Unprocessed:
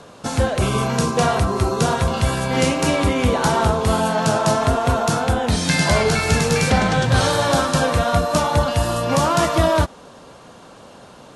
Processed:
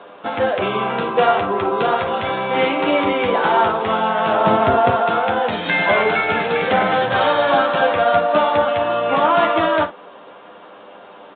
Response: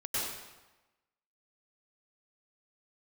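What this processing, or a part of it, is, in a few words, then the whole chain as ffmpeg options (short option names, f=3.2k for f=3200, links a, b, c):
telephone: -filter_complex "[0:a]asettb=1/sr,asplit=3[a][b][c];[a]atrim=end=4.404[d];[b]atrim=start=4.4:end=4.9,asetpts=PTS-STARTPTS,afade=t=in:d=0.004:c=qsin,afade=t=out:st=0.496:d=0.004:c=qsin,lowshelf=f=350:g=11.5[e];[c]atrim=start=4.896[f];[d][e]acrossfade=d=0.004:c1=hsin:c2=qsin[g];[g][f]acrossfade=d=0.004:c1=qsin:c2=hsin,highpass=350,lowpass=3.4k,aecho=1:1:10|55:0.596|0.266,volume=2.5dB" -ar 8000 -c:a pcm_alaw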